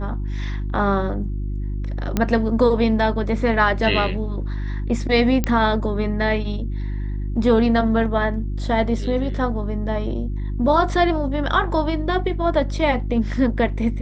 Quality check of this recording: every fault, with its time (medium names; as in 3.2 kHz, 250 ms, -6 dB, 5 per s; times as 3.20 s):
hum 50 Hz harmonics 7 -25 dBFS
2.17 s: pop -7 dBFS
5.44 s: pop -7 dBFS